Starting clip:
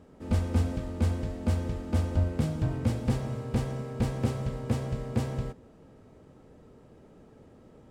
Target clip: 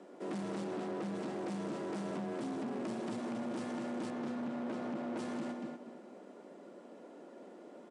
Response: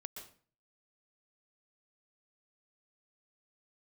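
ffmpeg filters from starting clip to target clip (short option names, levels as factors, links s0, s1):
-filter_complex "[0:a]asettb=1/sr,asplit=3[s0][s1][s2];[s0]atrim=end=4.104[s3];[s1]atrim=start=4.1:end=5.17,asetpts=PTS-STARTPTS,afade=t=in:d=0.004:c=qsin,afade=t=out:st=1.066:d=0.004:c=qsin,aemphasis=mode=reproduction:type=75kf[s4];[s2]atrim=start=5.166[s5];[s3][s4]acrossfade=d=0.004:c1=hsin:c2=qsin[s6];[s6][s5]acrossfade=d=0.004:c1=qsin:c2=hsin,highpass=110,asettb=1/sr,asplit=3[s7][s8][s9];[s7]atrim=end=0.644[s10];[s8]atrim=start=0.64:end=1.15,asetpts=PTS-STARTPTS,afade=t=in:d=0.004:c=qsin,afade=t=out:st=0.506:d=0.004:c=qsin,highshelf=f=5400:g=-7.5[s11];[s9]atrim=start=1.146[s12];[s10][s11]acrossfade=d=0.004:c1=hsin:c2=qsin[s13];[s13][s12]acrossfade=d=0.004:c1=qsin:c2=hsin,asplit=2[s14][s15];[s15]adelay=237,lowpass=f=4300:p=1,volume=0.355,asplit=2[s16][s17];[s17]adelay=237,lowpass=f=4300:p=1,volume=0.27,asplit=2[s18][s19];[s19]adelay=237,lowpass=f=4300:p=1,volume=0.27[s20];[s14][s16][s18][s20]amix=inputs=4:normalize=0,acompressor=threshold=0.0282:ratio=6,asoftclip=type=hard:threshold=0.0126,afreqshift=110,aresample=22050,aresample=44100,volume=1.19"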